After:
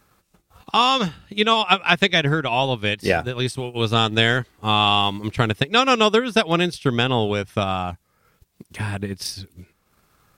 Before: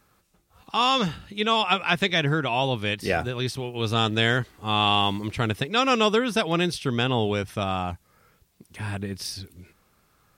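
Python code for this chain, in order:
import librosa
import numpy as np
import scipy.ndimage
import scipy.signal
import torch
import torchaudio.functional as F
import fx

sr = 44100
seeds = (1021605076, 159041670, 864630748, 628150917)

y = fx.peak_eq(x, sr, hz=8400.0, db=10.0, octaves=0.23, at=(3.44, 3.84))
y = fx.transient(y, sr, attack_db=5, sustain_db=-7)
y = y * librosa.db_to_amplitude(3.0)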